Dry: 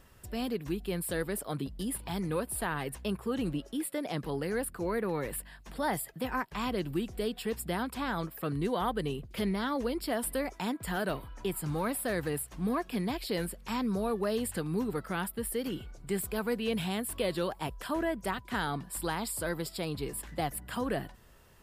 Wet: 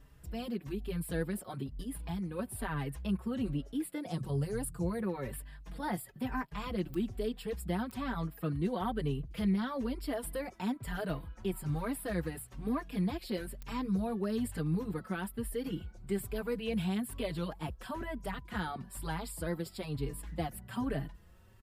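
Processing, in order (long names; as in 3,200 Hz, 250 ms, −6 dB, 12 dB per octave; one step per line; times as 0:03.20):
bass and treble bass +8 dB, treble −3 dB
0:01.62–0:02.39: downward compressor, threshold −30 dBFS, peak gain reduction 5.5 dB
0:04.06–0:05.02: octave-band graphic EQ 125/250/2,000/8,000 Hz +11/−4/−7/+11 dB
digital clicks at 0:06.94/0:07.91/0:13.62, −21 dBFS
barber-pole flanger 4.6 ms +1.1 Hz
level −2.5 dB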